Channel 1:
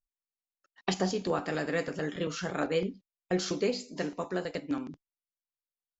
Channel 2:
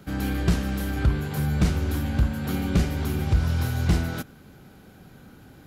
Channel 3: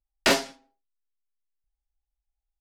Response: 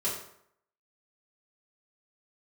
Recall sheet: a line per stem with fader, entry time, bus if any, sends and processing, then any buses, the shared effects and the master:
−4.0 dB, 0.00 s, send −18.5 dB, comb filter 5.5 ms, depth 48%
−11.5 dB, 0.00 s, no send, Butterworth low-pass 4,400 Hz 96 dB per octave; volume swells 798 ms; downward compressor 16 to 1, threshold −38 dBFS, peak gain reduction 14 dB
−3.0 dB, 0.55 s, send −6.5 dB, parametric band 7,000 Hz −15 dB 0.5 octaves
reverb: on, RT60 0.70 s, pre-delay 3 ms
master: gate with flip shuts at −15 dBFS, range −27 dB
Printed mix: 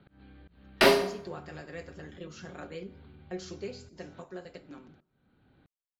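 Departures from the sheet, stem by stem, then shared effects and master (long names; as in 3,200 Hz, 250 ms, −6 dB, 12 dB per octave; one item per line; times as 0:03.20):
stem 1 −4.0 dB → −13.0 dB
master: missing gate with flip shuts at −15 dBFS, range −27 dB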